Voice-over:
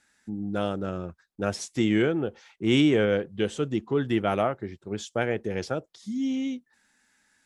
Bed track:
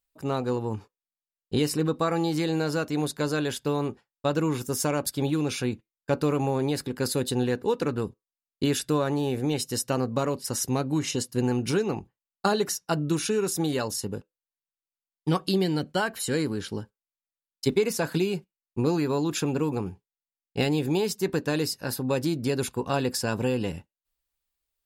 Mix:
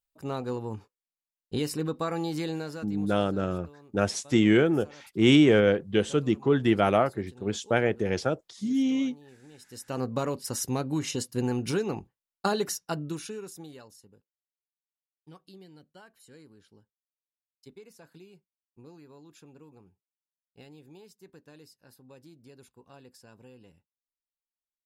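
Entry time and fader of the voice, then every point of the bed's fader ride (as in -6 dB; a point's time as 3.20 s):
2.55 s, +2.5 dB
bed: 2.48 s -5 dB
3.35 s -26 dB
9.52 s -26 dB
10.03 s -3 dB
12.78 s -3 dB
14.11 s -26 dB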